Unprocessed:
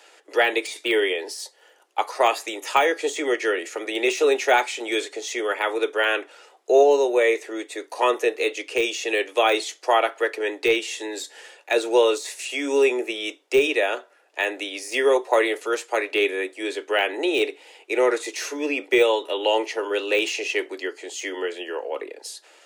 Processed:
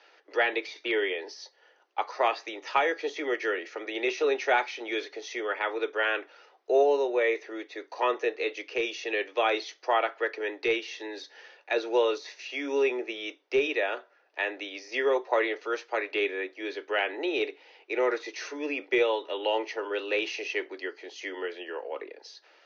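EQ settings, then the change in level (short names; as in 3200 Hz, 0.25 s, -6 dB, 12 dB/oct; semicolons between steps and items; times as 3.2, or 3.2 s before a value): rippled Chebyshev low-pass 6200 Hz, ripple 3 dB; air absorption 69 m; -4.0 dB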